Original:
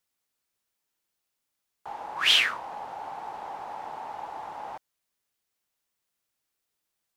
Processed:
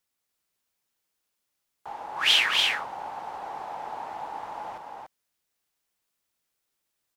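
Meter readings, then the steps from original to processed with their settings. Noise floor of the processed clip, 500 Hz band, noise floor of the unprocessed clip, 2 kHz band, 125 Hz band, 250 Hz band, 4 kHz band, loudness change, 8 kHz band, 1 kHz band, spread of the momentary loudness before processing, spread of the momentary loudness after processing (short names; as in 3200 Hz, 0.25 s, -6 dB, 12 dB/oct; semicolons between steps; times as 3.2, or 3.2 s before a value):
-81 dBFS, +2.0 dB, -82 dBFS, +2.0 dB, n/a, +2.0 dB, +2.0 dB, +1.5 dB, +2.0 dB, +1.5 dB, 21 LU, 21 LU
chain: loudspeakers at several distances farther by 83 m -10 dB, 99 m -4 dB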